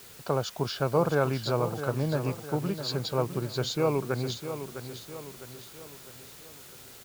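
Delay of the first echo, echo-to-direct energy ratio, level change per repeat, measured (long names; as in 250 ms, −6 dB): 656 ms, −9.0 dB, −6.5 dB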